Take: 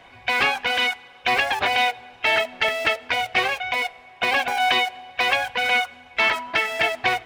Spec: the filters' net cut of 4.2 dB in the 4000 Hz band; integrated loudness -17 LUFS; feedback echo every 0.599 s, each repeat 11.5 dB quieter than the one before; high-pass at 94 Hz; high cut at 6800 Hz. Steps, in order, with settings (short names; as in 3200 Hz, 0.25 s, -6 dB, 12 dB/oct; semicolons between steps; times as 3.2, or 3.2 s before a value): HPF 94 Hz; LPF 6800 Hz; bell 4000 Hz -6 dB; feedback echo 0.599 s, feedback 27%, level -11.5 dB; gain +5.5 dB